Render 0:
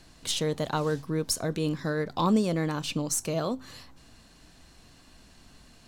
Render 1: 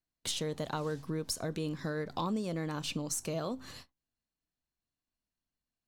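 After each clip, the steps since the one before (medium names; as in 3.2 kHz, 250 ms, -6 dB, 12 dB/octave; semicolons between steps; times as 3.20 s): gate -45 dBFS, range -39 dB; compression 3:1, threshold -34 dBFS, peak gain reduction 11.5 dB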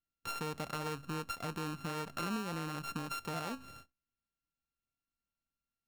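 sorted samples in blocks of 32 samples; treble shelf 5.6 kHz -5 dB; trim -3.5 dB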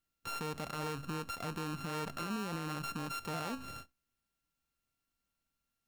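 peak limiter -37.5 dBFS, peak gain reduction 10.5 dB; trim +6.5 dB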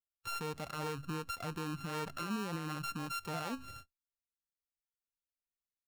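expander on every frequency bin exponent 1.5; trim +2 dB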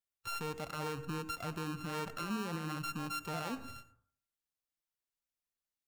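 reverberation RT60 0.55 s, pre-delay 77 ms, DRR 13.5 dB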